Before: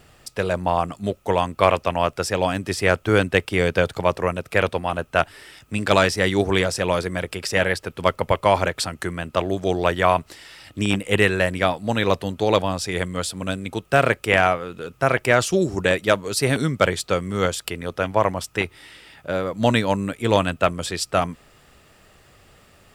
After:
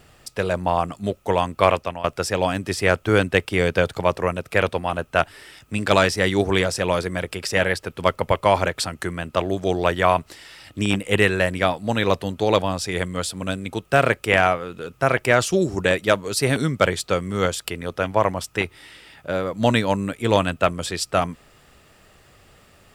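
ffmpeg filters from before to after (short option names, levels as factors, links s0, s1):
-filter_complex "[0:a]asplit=2[s0][s1];[s0]atrim=end=2.04,asetpts=PTS-STARTPTS,afade=t=out:st=1.72:d=0.32:silence=0.16788[s2];[s1]atrim=start=2.04,asetpts=PTS-STARTPTS,afade=t=in:d=0.004:c=hsin:silence=0.16788[s3];[s2][s3]concat=n=2:v=0:a=1"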